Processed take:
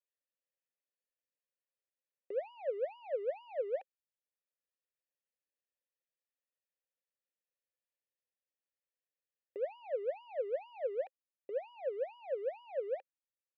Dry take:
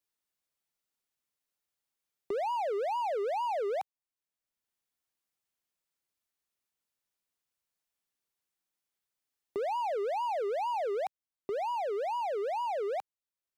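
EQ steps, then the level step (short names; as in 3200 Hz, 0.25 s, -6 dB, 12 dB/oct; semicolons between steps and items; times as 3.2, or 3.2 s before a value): vowel filter e; air absorption 180 m; +3.0 dB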